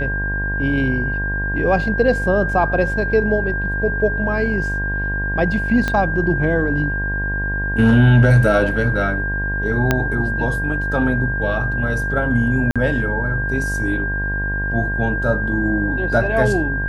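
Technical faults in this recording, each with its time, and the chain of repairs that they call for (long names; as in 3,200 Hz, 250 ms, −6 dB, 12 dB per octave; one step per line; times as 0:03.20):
mains buzz 50 Hz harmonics 22 −24 dBFS
whistle 1,600 Hz −22 dBFS
0:05.88: click −8 dBFS
0:09.91: click −2 dBFS
0:12.71–0:12.76: drop-out 46 ms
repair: click removal
hum removal 50 Hz, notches 22
notch filter 1,600 Hz, Q 30
repair the gap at 0:12.71, 46 ms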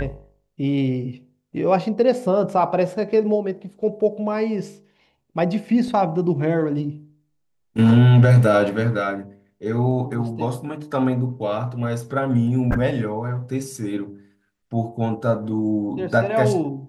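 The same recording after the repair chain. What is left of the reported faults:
0:05.88: click
0:09.91: click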